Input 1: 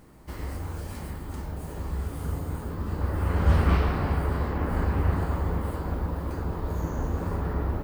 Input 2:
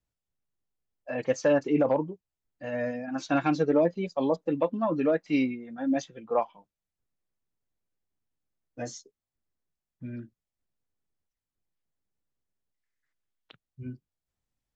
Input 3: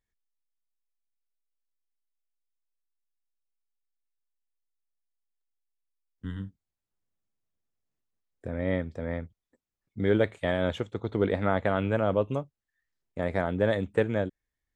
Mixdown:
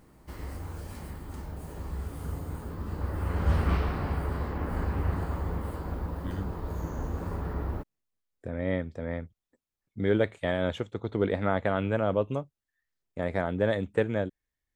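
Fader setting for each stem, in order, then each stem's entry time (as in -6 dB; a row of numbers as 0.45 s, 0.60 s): -4.5 dB, mute, -1.0 dB; 0.00 s, mute, 0.00 s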